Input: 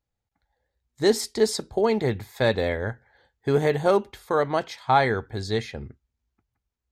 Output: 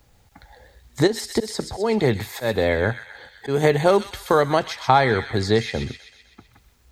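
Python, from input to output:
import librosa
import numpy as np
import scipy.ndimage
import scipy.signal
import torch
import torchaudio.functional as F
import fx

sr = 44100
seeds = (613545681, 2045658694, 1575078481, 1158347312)

y = fx.auto_swell(x, sr, attack_ms=397.0, at=(1.06, 3.63), fade=0.02)
y = fx.echo_wet_highpass(y, sr, ms=127, feedback_pct=41, hz=2300.0, wet_db=-6.5)
y = fx.band_squash(y, sr, depth_pct=70)
y = y * librosa.db_to_amplitude(6.0)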